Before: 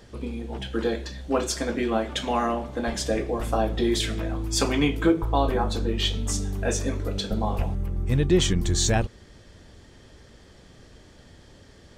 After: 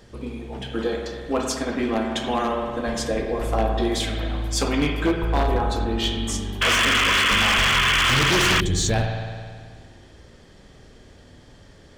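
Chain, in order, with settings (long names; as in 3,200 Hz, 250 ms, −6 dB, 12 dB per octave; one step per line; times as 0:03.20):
spring reverb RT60 1.9 s, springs 53 ms, chirp 50 ms, DRR 2.5 dB
sound drawn into the spectrogram noise, 0:06.61–0:08.61, 960–3,500 Hz −18 dBFS
wave folding −13 dBFS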